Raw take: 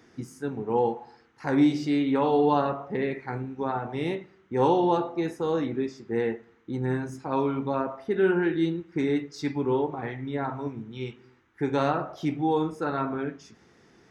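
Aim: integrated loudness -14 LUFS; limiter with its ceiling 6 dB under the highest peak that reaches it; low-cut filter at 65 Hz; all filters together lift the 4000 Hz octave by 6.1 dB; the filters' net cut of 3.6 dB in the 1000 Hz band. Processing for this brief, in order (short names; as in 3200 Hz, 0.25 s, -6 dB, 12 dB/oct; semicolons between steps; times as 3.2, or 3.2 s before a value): HPF 65 Hz; bell 1000 Hz -5 dB; bell 4000 Hz +7.5 dB; gain +15.5 dB; limiter -1.5 dBFS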